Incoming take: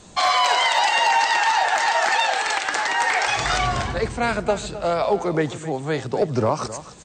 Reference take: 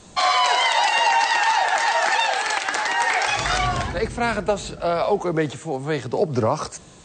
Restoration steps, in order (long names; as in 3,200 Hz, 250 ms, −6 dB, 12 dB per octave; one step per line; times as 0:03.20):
clipped peaks rebuilt −10.5 dBFS
echo removal 262 ms −14 dB